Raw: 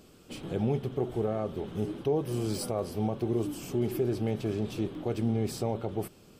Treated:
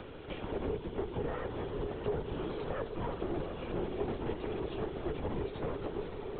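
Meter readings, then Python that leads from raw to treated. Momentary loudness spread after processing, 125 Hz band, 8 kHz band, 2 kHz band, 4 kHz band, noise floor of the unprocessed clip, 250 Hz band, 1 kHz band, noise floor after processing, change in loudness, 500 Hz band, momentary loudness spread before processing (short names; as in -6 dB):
2 LU, -8.5 dB, under -35 dB, +2.0 dB, -5.0 dB, -56 dBFS, -8.0 dB, -1.5 dB, -44 dBFS, -6.0 dB, -4.5 dB, 5 LU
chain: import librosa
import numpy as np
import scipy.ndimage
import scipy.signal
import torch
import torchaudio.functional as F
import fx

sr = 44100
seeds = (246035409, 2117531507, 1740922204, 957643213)

p1 = fx.lower_of_two(x, sr, delay_ms=2.1)
p2 = p1 + fx.echo_swell(p1, sr, ms=103, loudest=5, wet_db=-16.0, dry=0)
p3 = fx.lpc_vocoder(p2, sr, seeds[0], excitation='whisper', order=16)
p4 = fx.band_squash(p3, sr, depth_pct=70)
y = p4 * 10.0 ** (-3.5 / 20.0)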